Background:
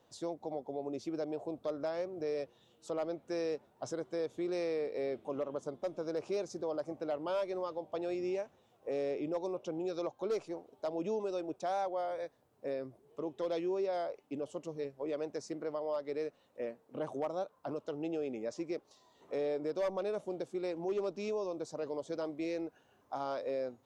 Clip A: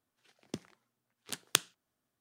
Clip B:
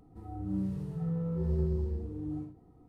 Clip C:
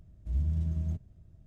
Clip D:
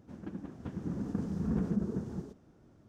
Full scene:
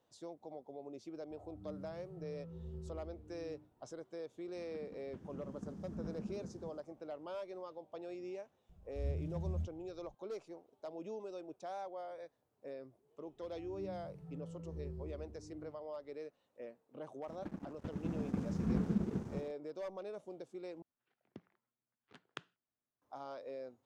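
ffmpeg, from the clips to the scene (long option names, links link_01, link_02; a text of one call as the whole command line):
ffmpeg -i bed.wav -i cue0.wav -i cue1.wav -i cue2.wav -i cue3.wav -filter_complex "[2:a]asplit=2[link_01][link_02];[4:a]asplit=2[link_03][link_04];[0:a]volume=-9.5dB[link_05];[3:a]asplit=2[link_06][link_07];[link_07]adelay=2.7,afreqshift=1.4[link_08];[link_06][link_08]amix=inputs=2:normalize=1[link_09];[link_04]aeval=exprs='sgn(val(0))*max(abs(val(0))-0.00355,0)':channel_layout=same[link_10];[1:a]lowpass=2000[link_11];[link_05]asplit=2[link_12][link_13];[link_12]atrim=end=20.824[link_14];[link_11]atrim=end=2.2,asetpts=PTS-STARTPTS,volume=-12.5dB[link_15];[link_13]atrim=start=23.016[link_16];[link_01]atrim=end=2.88,asetpts=PTS-STARTPTS,volume=-17dB,afade=type=in:duration=0.004:curve=hsin,afade=type=out:start_time=2.876:duration=0.004:curve=hsin,adelay=1150[link_17];[link_03]atrim=end=2.88,asetpts=PTS-STARTPTS,volume=-12.5dB,afade=type=in:duration=0.004:curve=hsin,afade=type=out:start_time=2.876:duration=0.004:curve=hsin,adelay=4480[link_18];[link_09]atrim=end=1.46,asetpts=PTS-STARTPTS,volume=-4.5dB,afade=type=in:duration=0.004:curve=hsin,afade=type=out:start_time=1.456:duration=0.004:curve=hsin,adelay=8690[link_19];[link_02]atrim=end=2.88,asetpts=PTS-STARTPTS,volume=-15.5dB,afade=type=in:duration=0.004:curve=hsin,afade=type=out:start_time=2.876:duration=0.004:curve=hsin,adelay=13270[link_20];[link_10]atrim=end=2.88,asetpts=PTS-STARTPTS,volume=-1.5dB,afade=type=in:duration=0.004:curve=hsin,afade=type=out:start_time=2.876:duration=0.004:curve=hsin,adelay=17190[link_21];[link_14][link_15]acrossfade=duration=0.004:curve1=hsin:curve2=hsin[link_22];[link_22][link_16]acrossfade=duration=0.004:curve1=hsin:curve2=hsin[link_23];[link_23][link_17][link_18][link_19][link_20][link_21]amix=inputs=6:normalize=0" out.wav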